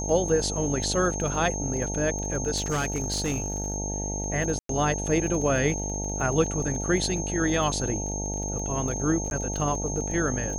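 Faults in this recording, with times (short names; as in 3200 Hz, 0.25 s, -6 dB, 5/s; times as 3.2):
buzz 50 Hz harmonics 18 -32 dBFS
crackle 19/s -32 dBFS
tone 6400 Hz -32 dBFS
2.56–3.76 clipped -22.5 dBFS
4.59–4.69 gap 0.103 s
9.3–9.31 gap 11 ms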